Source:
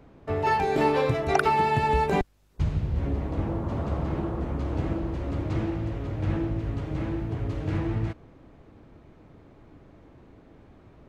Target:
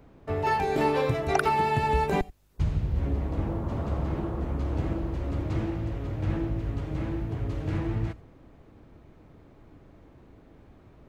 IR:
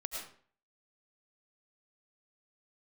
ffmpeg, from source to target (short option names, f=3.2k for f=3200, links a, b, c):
-filter_complex "[0:a]asplit=2[a][b];[b]aemphasis=mode=production:type=75fm[c];[1:a]atrim=start_sample=2205,atrim=end_sample=3969,lowshelf=f=120:g=12[d];[c][d]afir=irnorm=-1:irlink=0,volume=-11dB[e];[a][e]amix=inputs=2:normalize=0,volume=-3.5dB"